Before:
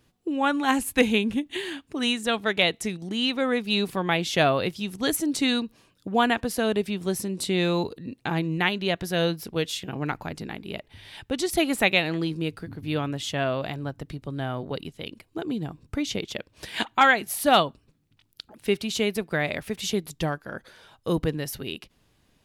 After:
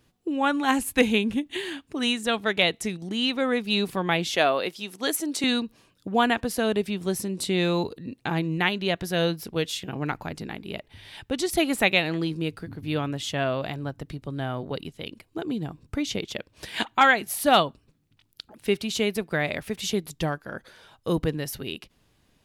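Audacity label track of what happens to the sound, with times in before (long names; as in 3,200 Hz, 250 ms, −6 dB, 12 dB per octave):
4.360000	5.440000	high-pass filter 330 Hz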